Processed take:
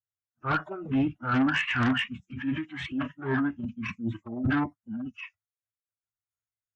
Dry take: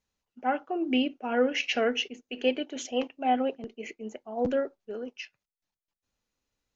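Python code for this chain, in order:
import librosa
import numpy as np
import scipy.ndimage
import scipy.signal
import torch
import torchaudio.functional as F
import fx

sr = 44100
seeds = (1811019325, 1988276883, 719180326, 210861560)

y = scipy.signal.sosfilt(scipy.signal.butter(2, 76.0, 'highpass', fs=sr, output='sos'), x)
y = fx.noise_reduce_blind(y, sr, reduce_db=29)
y = fx.curve_eq(y, sr, hz=(110.0, 190.0, 350.0, 800.0, 1200.0, 1900.0, 2800.0, 4200.0, 6600.0, 10000.0), db=(0, 15, -20, -22, 8, 10, -14, -22, 1, 7))
y = fx.transient(y, sr, attack_db=-6, sustain_db=6)
y = fx.pitch_keep_formants(y, sr, semitones=-11.0)
y = fx.cheby_harmonics(y, sr, harmonics=(5, 6, 7), levels_db=(-10, -35, -22), full_scale_db=-18.0)
y = F.gain(torch.from_numpy(y), 1.5).numpy()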